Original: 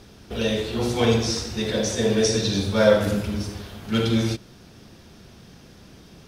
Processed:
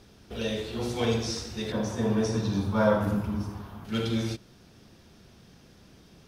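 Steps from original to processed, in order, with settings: 1.72–3.85 s: graphic EQ 125/250/500/1000/2000/4000/8000 Hz +5/+4/-5/+12/-5/-7/-7 dB; trim -7 dB

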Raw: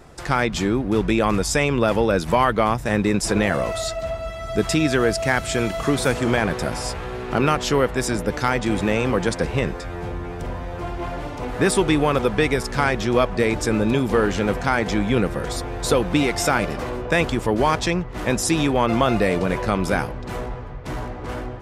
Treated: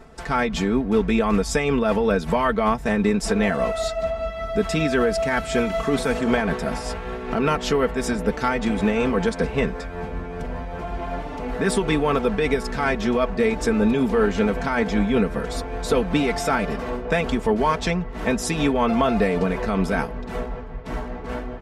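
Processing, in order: treble shelf 4.2 kHz -8 dB; comb 4.5 ms, depth 68%; peak limiter -9 dBFS, peak gain reduction 4.5 dB; tremolo 5.2 Hz, depth 33%

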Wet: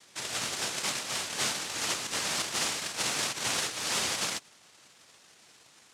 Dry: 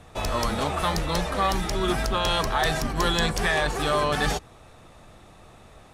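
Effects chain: noise-vocoded speech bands 1; trim -7 dB

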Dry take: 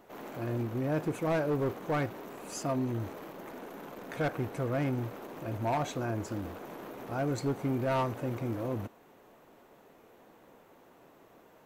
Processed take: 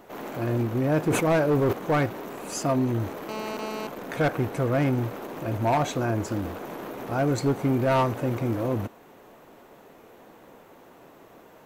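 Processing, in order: 1.06–1.73 s: decay stretcher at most 52 dB/s; 3.29–3.87 s: mobile phone buzz -41 dBFS; trim +7.5 dB

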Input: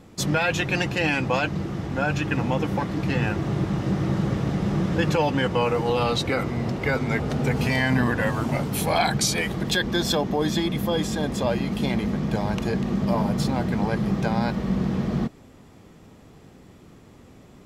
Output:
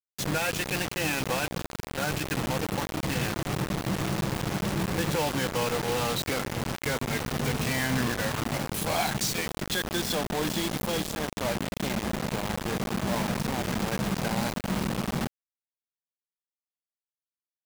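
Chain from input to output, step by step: 11.12–13.63 s: tone controls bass -1 dB, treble -13 dB; bit crusher 4-bit; trim -6.5 dB

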